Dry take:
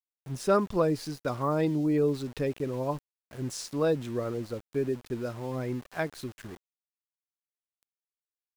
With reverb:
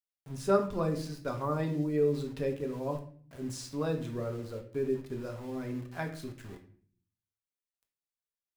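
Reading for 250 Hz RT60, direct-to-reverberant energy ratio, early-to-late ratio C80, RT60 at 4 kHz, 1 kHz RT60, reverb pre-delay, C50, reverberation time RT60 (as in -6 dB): 0.85 s, 2.5 dB, 14.0 dB, 0.35 s, 0.45 s, 4 ms, 10.0 dB, 0.50 s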